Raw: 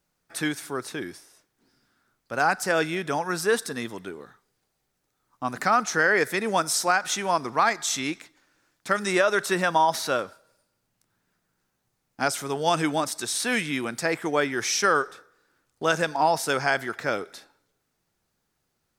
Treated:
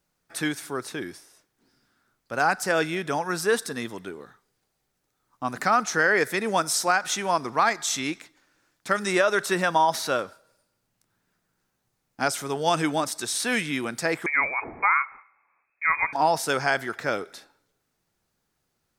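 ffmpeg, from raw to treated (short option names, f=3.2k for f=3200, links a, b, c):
-filter_complex "[0:a]asettb=1/sr,asplit=3[a][b][c];[a]atrim=end=14.264[d];[b]atrim=start=14.26:end=16.13,asetpts=PTS-STARTPTS,afade=t=in:d=0.004:c=qsin,afade=t=out:st=1.866:d=0.004:c=qsin,lowpass=f=2.2k:t=q:w=0.5098,lowpass=f=2.2k:t=q:w=0.6013,lowpass=f=2.2k:t=q:w=0.9,lowpass=f=2.2k:t=q:w=2.563,afreqshift=-2600[e];[c]atrim=start=16.126[f];[d][e]acrossfade=d=0.004:c1=hsin:c2=qsin[g];[g][f]acrossfade=d=0.004:c1=qsin:c2=hsin"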